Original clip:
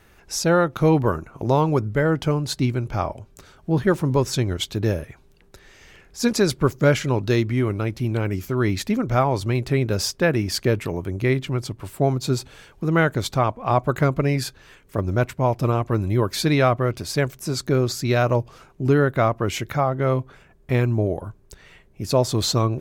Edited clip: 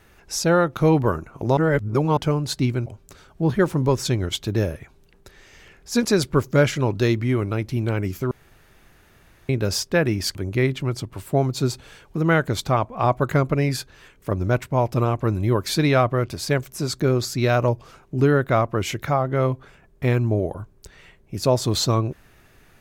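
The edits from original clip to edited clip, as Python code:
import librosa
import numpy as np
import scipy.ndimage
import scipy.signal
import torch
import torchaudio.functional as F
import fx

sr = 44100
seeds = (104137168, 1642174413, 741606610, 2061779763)

y = fx.edit(x, sr, fx.reverse_span(start_s=1.57, length_s=0.6),
    fx.cut(start_s=2.86, length_s=0.28),
    fx.room_tone_fill(start_s=8.59, length_s=1.18),
    fx.cut(start_s=10.63, length_s=0.39), tone=tone)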